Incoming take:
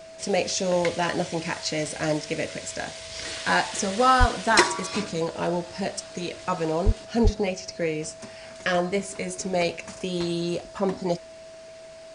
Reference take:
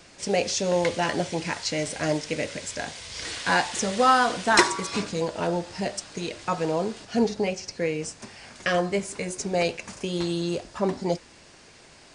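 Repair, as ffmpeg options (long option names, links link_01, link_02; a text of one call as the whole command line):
ffmpeg -i in.wav -filter_complex "[0:a]bandreject=frequency=650:width=30,asplit=3[link_01][link_02][link_03];[link_01]afade=type=out:start_time=4.19:duration=0.02[link_04];[link_02]highpass=frequency=140:width=0.5412,highpass=frequency=140:width=1.3066,afade=type=in:start_time=4.19:duration=0.02,afade=type=out:start_time=4.31:duration=0.02[link_05];[link_03]afade=type=in:start_time=4.31:duration=0.02[link_06];[link_04][link_05][link_06]amix=inputs=3:normalize=0,asplit=3[link_07][link_08][link_09];[link_07]afade=type=out:start_time=6.85:duration=0.02[link_10];[link_08]highpass=frequency=140:width=0.5412,highpass=frequency=140:width=1.3066,afade=type=in:start_time=6.85:duration=0.02,afade=type=out:start_time=6.97:duration=0.02[link_11];[link_09]afade=type=in:start_time=6.97:duration=0.02[link_12];[link_10][link_11][link_12]amix=inputs=3:normalize=0,asplit=3[link_13][link_14][link_15];[link_13]afade=type=out:start_time=7.23:duration=0.02[link_16];[link_14]highpass=frequency=140:width=0.5412,highpass=frequency=140:width=1.3066,afade=type=in:start_time=7.23:duration=0.02,afade=type=out:start_time=7.35:duration=0.02[link_17];[link_15]afade=type=in:start_time=7.35:duration=0.02[link_18];[link_16][link_17][link_18]amix=inputs=3:normalize=0" out.wav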